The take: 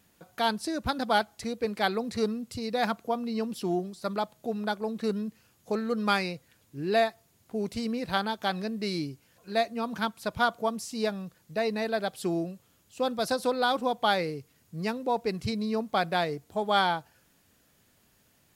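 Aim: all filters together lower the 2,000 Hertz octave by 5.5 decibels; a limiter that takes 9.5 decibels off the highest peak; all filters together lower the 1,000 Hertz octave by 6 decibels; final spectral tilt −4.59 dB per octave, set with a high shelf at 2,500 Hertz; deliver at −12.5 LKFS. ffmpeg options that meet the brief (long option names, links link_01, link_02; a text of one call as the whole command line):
ffmpeg -i in.wav -af "equalizer=frequency=1000:width_type=o:gain=-8.5,equalizer=frequency=2000:width_type=o:gain=-6,highshelf=frequency=2500:gain=5,volume=22dB,alimiter=limit=-1.5dB:level=0:latency=1" out.wav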